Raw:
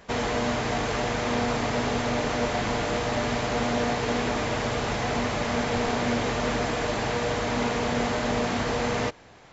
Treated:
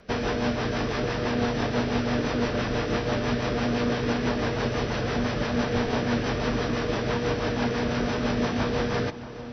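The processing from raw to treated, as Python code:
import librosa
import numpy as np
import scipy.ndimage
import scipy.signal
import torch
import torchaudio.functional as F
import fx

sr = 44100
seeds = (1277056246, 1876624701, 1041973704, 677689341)

y = fx.formant_shift(x, sr, semitones=-4)
y = fx.rotary(y, sr, hz=6.0)
y = fx.echo_alternate(y, sr, ms=633, hz=1300.0, feedback_pct=71, wet_db=-13)
y = y * librosa.db_to_amplitude(2.0)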